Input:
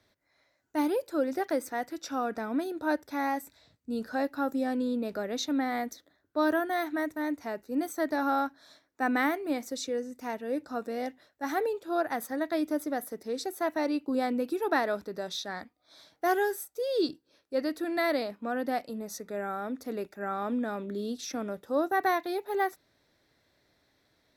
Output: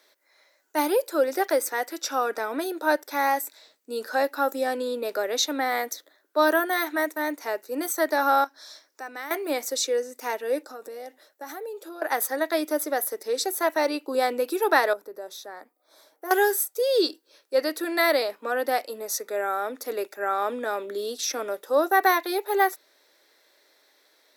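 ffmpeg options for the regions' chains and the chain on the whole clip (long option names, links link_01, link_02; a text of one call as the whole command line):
ffmpeg -i in.wav -filter_complex "[0:a]asettb=1/sr,asplit=3[link_01][link_02][link_03];[link_01]atrim=end=8.444[link_04];[link_02]atrim=start=8.44:end=9.31,asetpts=PTS-STARTPTS,afade=type=in:duration=0.004:curve=qsin,afade=type=out:start_time=0.866:duration=0.004:curve=qsin,equalizer=frequency=5300:width=2.6:gain=9.5,acompressor=threshold=-52dB:ratio=2:attack=3.2:release=140:knee=1:detection=peak[link_05];[link_03]atrim=start=9.306[link_06];[link_04][link_05]acrossfade=duration=0.004:curve1=hsin:curve2=qsin[link_07];[link_07][link_06]acrossfade=duration=0.004:curve1=qsin:curve2=hsin,asettb=1/sr,asplit=3[link_08][link_09][link_10];[link_08]atrim=end=10.634[link_11];[link_09]atrim=start=10.63:end=12.02,asetpts=PTS-STARTPTS,afade=type=in:duration=0.004:curve=qsin,afade=type=out:start_time=1.386:duration=0.004:curve=qsin,equalizer=frequency=2500:width_type=o:width=2.4:gain=-5.5,bandreject=frequency=1000:width=16,acompressor=threshold=-39dB:ratio=12:attack=3.2:release=140:knee=1:detection=peak[link_12];[link_10]atrim=start=12.016[link_13];[link_11][link_12]acrossfade=duration=0.004:curve1=hsin:curve2=qsin[link_14];[link_14][link_13]acrossfade=duration=0.004:curve1=qsin:curve2=hsin,asettb=1/sr,asplit=3[link_15][link_16][link_17];[link_15]atrim=end=14.934[link_18];[link_16]atrim=start=14.93:end=16.31,asetpts=PTS-STARTPTS,afade=type=in:duration=0.004:curve=qsin,afade=type=out:start_time=1.376:duration=0.004:curve=qsin,equalizer=frequency=3700:width=0.48:gain=-14.5,acompressor=threshold=-51dB:ratio=1.5:attack=3.2:release=140:knee=1:detection=peak[link_19];[link_17]atrim=start=16.306[link_20];[link_18][link_19]acrossfade=duration=0.004:curve1=hsin:curve2=qsin[link_21];[link_21][link_20]acrossfade=duration=0.004:curve1=qsin:curve2=hsin,highpass=frequency=380:width=0.5412,highpass=frequency=380:width=1.3066,highshelf=frequency=6900:gain=8.5,bandreject=frequency=700:width=12,volume=8dB" out.wav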